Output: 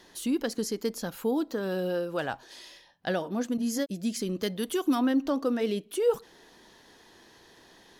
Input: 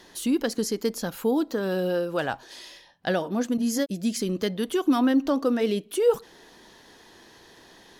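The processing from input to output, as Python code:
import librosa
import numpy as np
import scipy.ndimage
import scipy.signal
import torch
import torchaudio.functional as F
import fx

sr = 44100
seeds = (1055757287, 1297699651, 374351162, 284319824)

y = fx.high_shelf(x, sr, hz=5400.0, db=8.0, at=(4.43, 4.95))
y = y * librosa.db_to_amplitude(-4.0)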